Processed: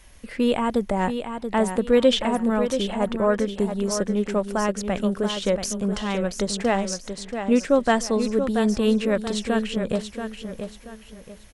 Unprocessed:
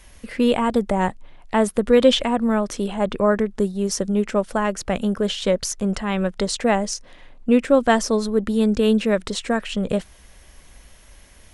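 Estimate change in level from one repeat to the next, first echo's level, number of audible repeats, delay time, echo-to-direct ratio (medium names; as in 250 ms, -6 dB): -10.0 dB, -8.0 dB, 3, 681 ms, -7.5 dB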